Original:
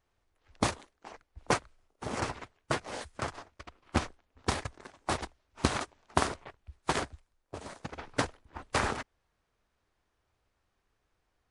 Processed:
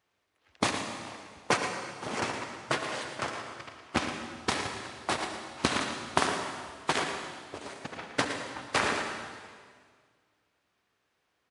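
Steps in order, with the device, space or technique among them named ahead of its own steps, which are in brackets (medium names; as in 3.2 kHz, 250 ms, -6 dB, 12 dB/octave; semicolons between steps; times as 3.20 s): PA in a hall (high-pass 140 Hz 12 dB/octave; peaking EQ 2.8 kHz +5 dB 1.8 oct; delay 114 ms -10 dB; reverberation RT60 1.8 s, pre-delay 62 ms, DRR 5 dB)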